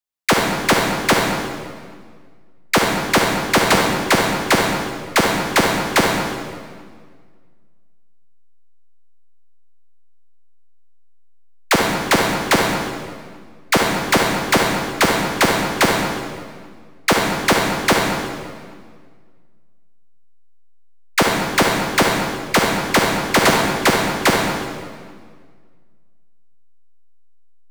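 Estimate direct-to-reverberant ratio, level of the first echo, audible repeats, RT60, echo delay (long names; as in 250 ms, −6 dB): −0.5 dB, no echo audible, no echo audible, 1.8 s, no echo audible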